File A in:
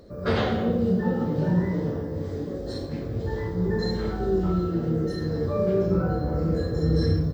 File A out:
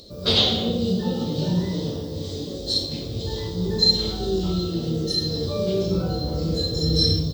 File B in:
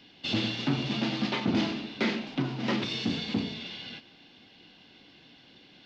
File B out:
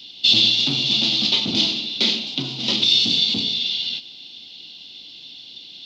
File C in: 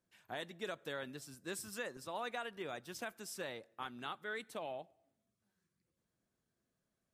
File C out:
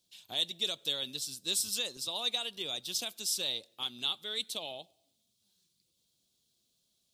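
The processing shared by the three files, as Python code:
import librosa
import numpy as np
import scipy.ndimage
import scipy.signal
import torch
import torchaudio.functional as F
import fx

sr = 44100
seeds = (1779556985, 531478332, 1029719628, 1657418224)

y = fx.high_shelf_res(x, sr, hz=2500.0, db=13.5, q=3.0)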